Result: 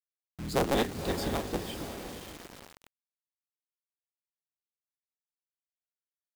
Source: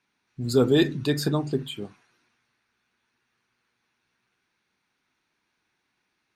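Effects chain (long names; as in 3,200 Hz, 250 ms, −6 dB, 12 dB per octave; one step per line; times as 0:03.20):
sub-harmonics by changed cycles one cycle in 3, inverted
dynamic equaliser 780 Hz, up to +4 dB, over −37 dBFS, Q 3.6
feedback delay with all-pass diffusion 519 ms, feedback 42%, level −8.5 dB
bit reduction 6 bits
level −8.5 dB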